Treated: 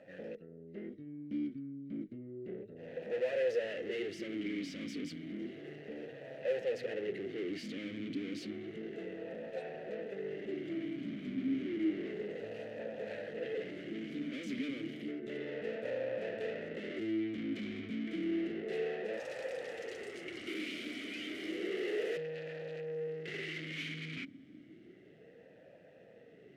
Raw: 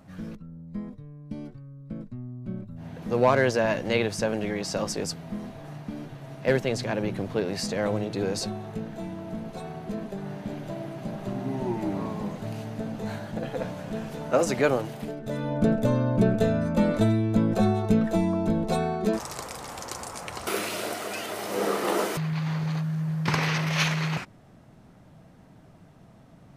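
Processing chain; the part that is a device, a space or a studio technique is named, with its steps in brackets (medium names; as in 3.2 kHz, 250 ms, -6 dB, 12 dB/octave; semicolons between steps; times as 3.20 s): talk box (valve stage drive 39 dB, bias 0.6; talking filter e-i 0.31 Hz); trim +13.5 dB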